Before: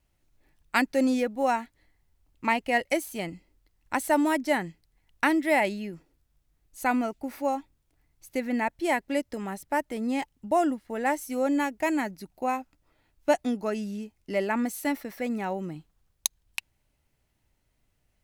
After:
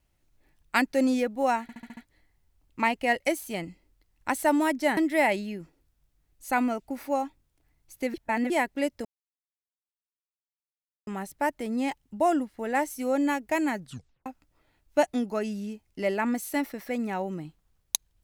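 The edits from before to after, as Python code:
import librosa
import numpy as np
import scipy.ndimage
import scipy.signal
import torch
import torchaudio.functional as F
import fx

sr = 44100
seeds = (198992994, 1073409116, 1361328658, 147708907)

y = fx.edit(x, sr, fx.stutter(start_s=1.62, slice_s=0.07, count=6),
    fx.cut(start_s=4.62, length_s=0.68),
    fx.reverse_span(start_s=8.47, length_s=0.36),
    fx.insert_silence(at_s=9.38, length_s=2.02),
    fx.tape_stop(start_s=12.09, length_s=0.48), tone=tone)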